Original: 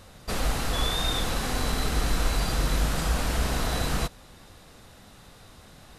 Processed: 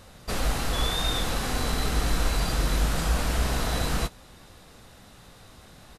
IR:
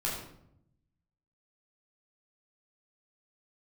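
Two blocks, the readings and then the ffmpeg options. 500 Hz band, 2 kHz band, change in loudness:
0.0 dB, 0.0 dB, +0.5 dB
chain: -filter_complex "[0:a]asplit=2[a][b];[b]adelay=17,volume=-13.5dB[c];[a][c]amix=inputs=2:normalize=0"

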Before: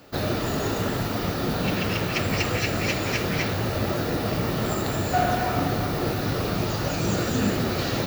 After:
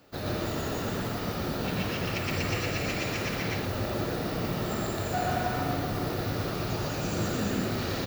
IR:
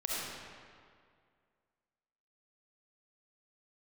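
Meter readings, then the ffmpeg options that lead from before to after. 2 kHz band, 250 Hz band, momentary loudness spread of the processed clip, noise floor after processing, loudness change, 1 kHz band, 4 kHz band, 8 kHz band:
-5.5 dB, -5.5 dB, 3 LU, -33 dBFS, -5.5 dB, -5.5 dB, -5.5 dB, -5.5 dB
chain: -af "aecho=1:1:119.5|174.9:1|0.316,volume=-8.5dB"

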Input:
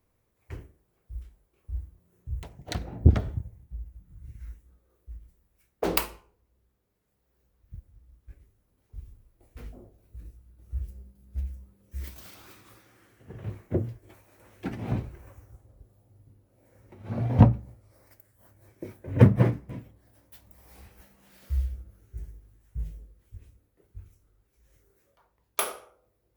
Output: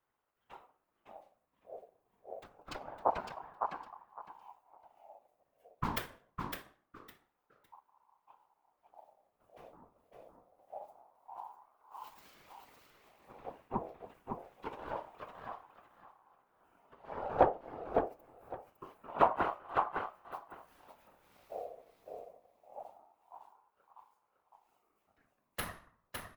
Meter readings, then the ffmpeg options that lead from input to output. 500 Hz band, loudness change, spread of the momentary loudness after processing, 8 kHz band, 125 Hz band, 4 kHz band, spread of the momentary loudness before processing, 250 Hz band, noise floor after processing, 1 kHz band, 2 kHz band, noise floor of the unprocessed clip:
-2.5 dB, -11.0 dB, 23 LU, under -10 dB, -26.0 dB, -8.5 dB, 25 LU, -16.0 dB, -81 dBFS, +5.0 dB, -3.0 dB, -73 dBFS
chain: -af "lowshelf=f=120:g=-8,bandreject=f=2.4k:w=21,afftfilt=real='hypot(re,im)*cos(2*PI*random(0))':imag='hypot(re,im)*sin(2*PI*random(1))':win_size=512:overlap=0.75,bass=f=250:g=-1,treble=f=4k:g=-7,aecho=1:1:558|1116|1674:0.562|0.107|0.0203,aeval=exprs='val(0)*sin(2*PI*760*n/s+760*0.25/0.25*sin(2*PI*0.25*n/s))':c=same,volume=1dB"

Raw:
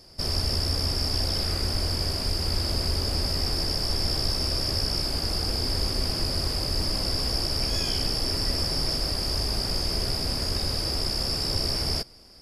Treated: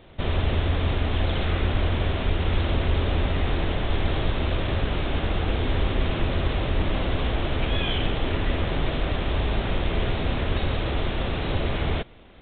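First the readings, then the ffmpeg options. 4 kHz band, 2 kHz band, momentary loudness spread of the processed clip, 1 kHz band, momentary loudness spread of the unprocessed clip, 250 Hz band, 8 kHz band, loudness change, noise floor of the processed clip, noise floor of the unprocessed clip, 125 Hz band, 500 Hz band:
-8.0 dB, +7.5 dB, 2 LU, +6.0 dB, 1 LU, +5.5 dB, under -40 dB, -0.5 dB, -29 dBFS, -30 dBFS, +5.0 dB, +5.5 dB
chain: -af "crystalizer=i=2.5:c=0,asoftclip=type=hard:threshold=-15.5dB,aresample=8000,aresample=44100,volume=5.5dB"

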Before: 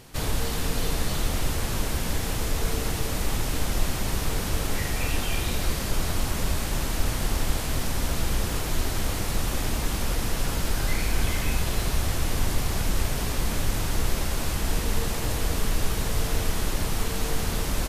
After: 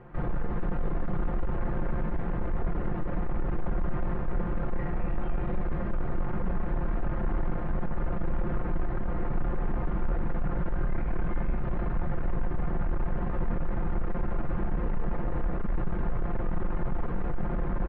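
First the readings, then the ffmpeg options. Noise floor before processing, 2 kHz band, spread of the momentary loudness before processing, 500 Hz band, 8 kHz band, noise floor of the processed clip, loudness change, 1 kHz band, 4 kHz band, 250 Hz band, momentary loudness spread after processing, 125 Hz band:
-29 dBFS, -10.5 dB, 1 LU, -3.0 dB, under -40 dB, -30 dBFS, -5.0 dB, -4.0 dB, under -30 dB, -1.0 dB, 1 LU, -3.5 dB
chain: -filter_complex "[0:a]acrossover=split=520[a][b];[a]volume=22.5dB,asoftclip=hard,volume=-22.5dB[c];[b]alimiter=level_in=4dB:limit=-24dB:level=0:latency=1,volume=-4dB[d];[c][d]amix=inputs=2:normalize=0,lowpass=f=1.6k:w=0.5412,lowpass=f=1.6k:w=1.3066,aecho=1:1:5.7:0.77,asoftclip=type=tanh:threshold=-20.5dB,asplit=2[e][f];[f]aecho=0:1:643:0.2[g];[e][g]amix=inputs=2:normalize=0"

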